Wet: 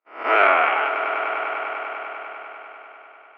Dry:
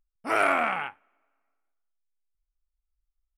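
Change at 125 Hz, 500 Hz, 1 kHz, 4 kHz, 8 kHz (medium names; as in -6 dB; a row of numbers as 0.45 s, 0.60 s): under -15 dB, +8.5 dB, +9.0 dB, +8.5 dB, under -20 dB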